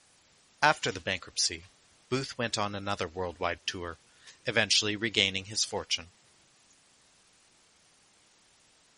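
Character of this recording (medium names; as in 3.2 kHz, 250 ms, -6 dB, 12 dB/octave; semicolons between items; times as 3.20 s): a quantiser's noise floor 10-bit, dither triangular; MP3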